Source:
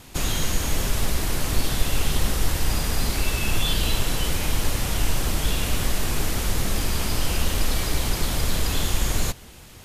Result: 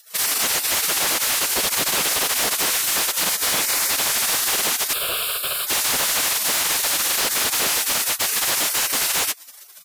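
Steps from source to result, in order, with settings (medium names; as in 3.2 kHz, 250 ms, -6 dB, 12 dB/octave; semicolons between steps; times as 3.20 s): spectral gate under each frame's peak -30 dB weak; compression 2.5:1, threshold -36 dBFS, peak gain reduction 6 dB; sine folder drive 16 dB, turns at -16.5 dBFS; 4.93–5.67 s: static phaser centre 1.3 kHz, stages 8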